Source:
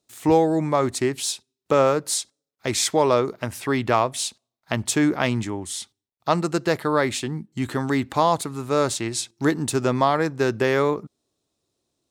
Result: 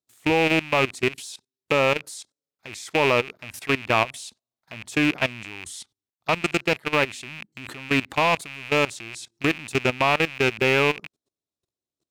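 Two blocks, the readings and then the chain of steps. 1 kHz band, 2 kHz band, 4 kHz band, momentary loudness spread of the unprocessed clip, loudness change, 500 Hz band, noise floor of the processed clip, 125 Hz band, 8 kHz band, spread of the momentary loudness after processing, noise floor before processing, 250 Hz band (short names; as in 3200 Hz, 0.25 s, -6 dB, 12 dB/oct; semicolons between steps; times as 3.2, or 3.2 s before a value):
-2.5 dB, +6.5 dB, +1.5 dB, 10 LU, 0.0 dB, -3.0 dB, under -85 dBFS, -4.0 dB, -10.0 dB, 17 LU, -85 dBFS, -4.0 dB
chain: rattling part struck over -35 dBFS, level -9 dBFS; level quantiser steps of 19 dB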